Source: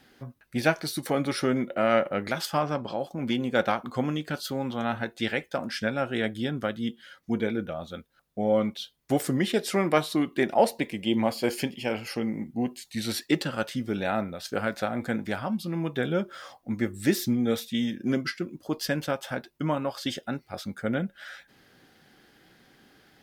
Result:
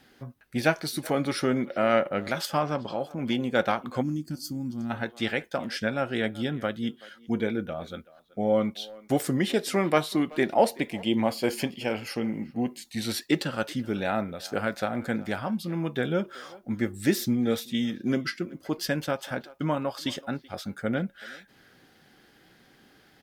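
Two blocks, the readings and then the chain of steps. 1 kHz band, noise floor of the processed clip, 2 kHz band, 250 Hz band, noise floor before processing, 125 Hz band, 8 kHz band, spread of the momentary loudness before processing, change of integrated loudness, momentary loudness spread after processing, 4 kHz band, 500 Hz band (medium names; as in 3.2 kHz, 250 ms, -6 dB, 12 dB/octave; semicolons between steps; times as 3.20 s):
0.0 dB, -59 dBFS, 0.0 dB, 0.0 dB, -64 dBFS, 0.0 dB, 0.0 dB, 10 LU, 0.0 dB, 10 LU, 0.0 dB, 0.0 dB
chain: speakerphone echo 380 ms, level -20 dB; time-frequency box 4.02–4.90 s, 350–4300 Hz -19 dB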